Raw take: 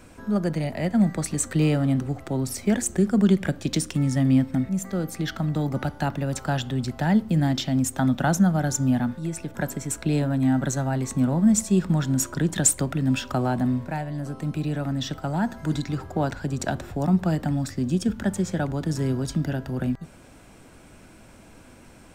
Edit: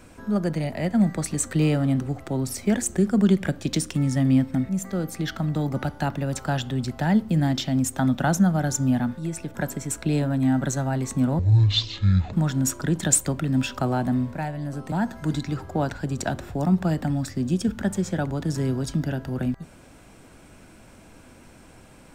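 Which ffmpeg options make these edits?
ffmpeg -i in.wav -filter_complex "[0:a]asplit=4[link_01][link_02][link_03][link_04];[link_01]atrim=end=11.394[link_05];[link_02]atrim=start=11.39:end=11.86,asetpts=PTS-STARTPTS,asetrate=22050,aresample=44100[link_06];[link_03]atrim=start=11.856:end=14.452[link_07];[link_04]atrim=start=15.328[link_08];[link_05][link_06]acrossfade=duration=0.004:curve1=hsin:curve2=hsin[link_09];[link_09][link_07]acrossfade=duration=0.004:curve1=hsin:curve2=hsin[link_10];[link_10][link_08]acrossfade=duration=0.004:curve1=hsin:curve2=hsin" out.wav

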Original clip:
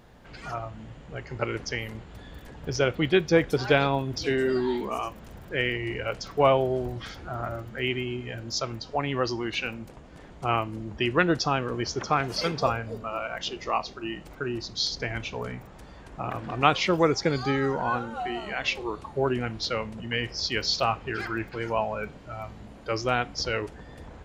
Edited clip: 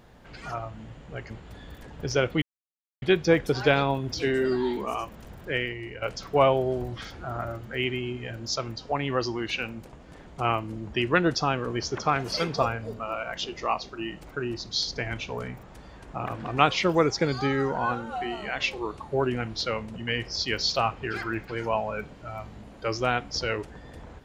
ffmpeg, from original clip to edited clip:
ffmpeg -i in.wav -filter_complex "[0:a]asplit=4[link_01][link_02][link_03][link_04];[link_01]atrim=end=1.302[link_05];[link_02]atrim=start=1.938:end=3.06,asetpts=PTS-STARTPTS,afade=type=out:start_time=1.118:duration=0.004:curve=hsin,apad=pad_dur=0.6[link_06];[link_03]atrim=start=3.06:end=6.06,asetpts=PTS-STARTPTS,afade=type=in:duration=0.004:curve=hsin,afade=type=out:start_time=2.48:duration=0.52:curve=qua:silence=0.421697[link_07];[link_04]atrim=start=6.06,asetpts=PTS-STARTPTS,afade=type=in:duration=0.004:curve=hsin:silence=0.421697[link_08];[link_06][link_07][link_08]concat=n=3:v=0:a=1[link_09];[link_05][link_09]acrossfade=duration=0.004:curve1=hsin:curve2=hsin" out.wav

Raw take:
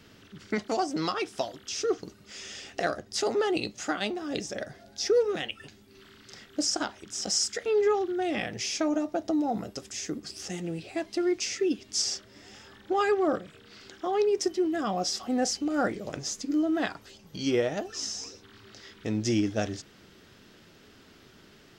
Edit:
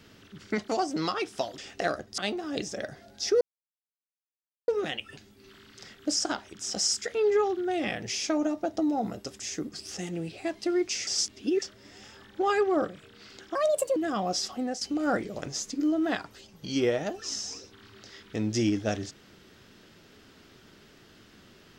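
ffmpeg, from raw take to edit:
ffmpeg -i in.wav -filter_complex "[0:a]asplit=9[link_01][link_02][link_03][link_04][link_05][link_06][link_07][link_08][link_09];[link_01]atrim=end=1.582[link_10];[link_02]atrim=start=2.568:end=3.172[link_11];[link_03]atrim=start=3.958:end=5.19,asetpts=PTS-STARTPTS,afade=type=out:start_time=1.228:duration=0.004:curve=hsin,apad=pad_dur=1.27[link_12];[link_04]atrim=start=5.19:end=11.582,asetpts=PTS-STARTPTS,afade=type=in:duration=0.004:curve=hsin[link_13];[link_05]atrim=start=11.578:end=12.132,asetpts=PTS-STARTPTS,areverse[link_14];[link_06]atrim=start=12.128:end=14.064[link_15];[link_07]atrim=start=14.06:end=14.67,asetpts=PTS-STARTPTS,asetrate=65268,aresample=44100,atrim=end_sample=18176,asetpts=PTS-STARTPTS[link_16];[link_08]atrim=start=14.666:end=15.52,asetpts=PTS-STARTPTS,afade=type=out:start_time=0.534:duration=0.32:silence=0.251189[link_17];[link_09]atrim=start=15.52,asetpts=PTS-STARTPTS,afade=type=in:duration=0.004:curve=hsin:silence=0.251189[link_18];[link_10][link_11]acrossfade=duration=0.004:curve1=hsin:curve2=hsin[link_19];[link_12][link_13]concat=n=2:v=0:a=1[link_20];[link_19][link_20]acrossfade=duration=0.004:curve1=hsin:curve2=hsin[link_21];[link_21][link_14]acrossfade=duration=0.004:curve1=hsin:curve2=hsin[link_22];[link_22][link_15]acrossfade=duration=0.004:curve1=hsin:curve2=hsin[link_23];[link_23][link_16]acrossfade=duration=0.004:curve1=hsin:curve2=hsin[link_24];[link_17][link_18]concat=n=2:v=0:a=1[link_25];[link_24][link_25]acrossfade=duration=0.004:curve1=hsin:curve2=hsin" out.wav

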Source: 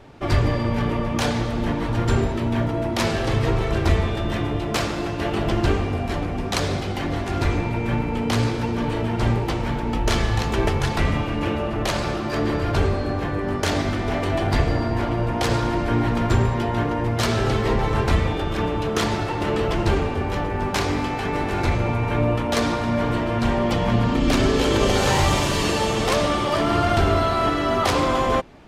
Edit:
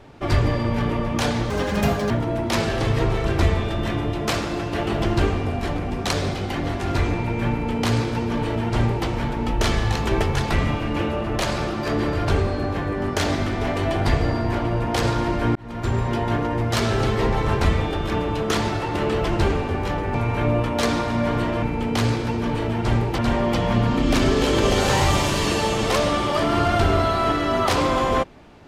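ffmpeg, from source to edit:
ffmpeg -i in.wav -filter_complex "[0:a]asplit=7[link_01][link_02][link_03][link_04][link_05][link_06][link_07];[link_01]atrim=end=1.504[link_08];[link_02]atrim=start=1.5:end=2.57,asetpts=PTS-STARTPTS,asetrate=78057,aresample=44100,atrim=end_sample=26659,asetpts=PTS-STARTPTS[link_09];[link_03]atrim=start=2.566:end=16.02,asetpts=PTS-STARTPTS,afade=type=out:start_time=13.45:duration=0.004:curve=hsin[link_10];[link_04]atrim=start=16.02:end=20.612,asetpts=PTS-STARTPTS,afade=type=in:duration=0.57[link_11];[link_05]atrim=start=21.878:end=23.362[link_12];[link_06]atrim=start=7.968:end=9.532[link_13];[link_07]atrim=start=23.358[link_14];[link_08][link_09]acrossfade=duration=0.004:curve1=hsin:curve2=hsin[link_15];[link_10][link_11]concat=n=2:v=0:a=1[link_16];[link_15][link_16]acrossfade=duration=0.004:curve1=hsin:curve2=hsin[link_17];[link_17][link_12]acrossfade=duration=0.004:curve1=hsin:curve2=hsin[link_18];[link_18][link_13]acrossfade=duration=0.004:curve1=hsin:curve2=hsin[link_19];[link_19][link_14]acrossfade=duration=0.004:curve1=hsin:curve2=hsin" out.wav

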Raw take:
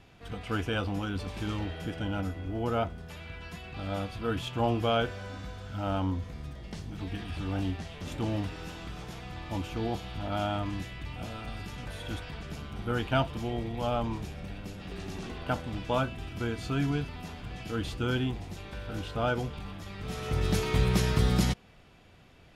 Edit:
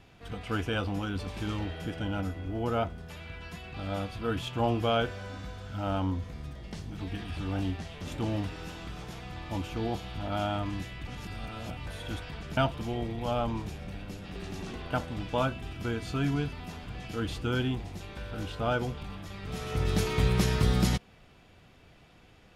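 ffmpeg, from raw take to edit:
ffmpeg -i in.wav -filter_complex "[0:a]asplit=4[link_01][link_02][link_03][link_04];[link_01]atrim=end=11.072[link_05];[link_02]atrim=start=11.068:end=11.862,asetpts=PTS-STARTPTS,areverse[link_06];[link_03]atrim=start=11.858:end=12.572[link_07];[link_04]atrim=start=13.128[link_08];[link_05][link_06]acrossfade=duration=0.004:curve1=hsin:curve2=hsin[link_09];[link_09][link_07]acrossfade=duration=0.004:curve1=hsin:curve2=hsin[link_10];[link_10][link_08]acrossfade=duration=0.004:curve1=hsin:curve2=hsin" out.wav

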